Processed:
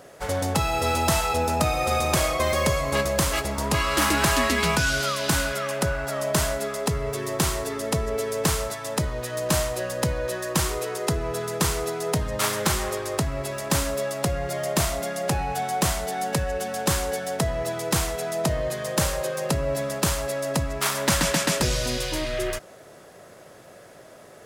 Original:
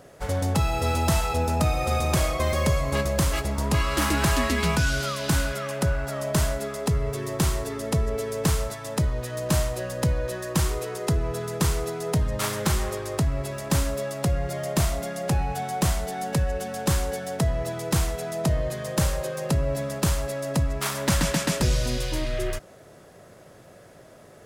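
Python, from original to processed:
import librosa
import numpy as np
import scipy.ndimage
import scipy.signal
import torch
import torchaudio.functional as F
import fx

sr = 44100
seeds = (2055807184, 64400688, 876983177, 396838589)

y = fx.low_shelf(x, sr, hz=220.0, db=-9.5)
y = y * librosa.db_to_amplitude(4.0)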